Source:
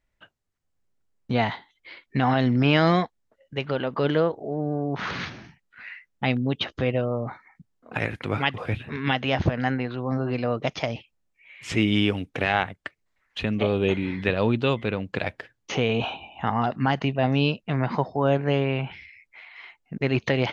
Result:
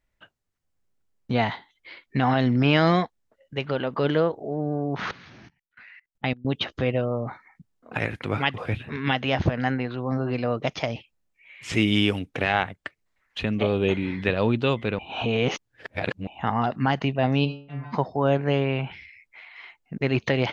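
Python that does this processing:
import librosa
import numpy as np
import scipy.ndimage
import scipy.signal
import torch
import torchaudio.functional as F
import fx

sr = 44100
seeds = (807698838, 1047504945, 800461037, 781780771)

y = fx.level_steps(x, sr, step_db=24, at=(5.11, 6.45))
y = fx.high_shelf(y, sr, hz=6000.0, db=11.5, at=(11.73, 12.19))
y = fx.stiff_resonator(y, sr, f0_hz=140.0, decay_s=0.53, stiffness=0.002, at=(17.44, 17.92), fade=0.02)
y = fx.edit(y, sr, fx.reverse_span(start_s=14.99, length_s=1.28), tone=tone)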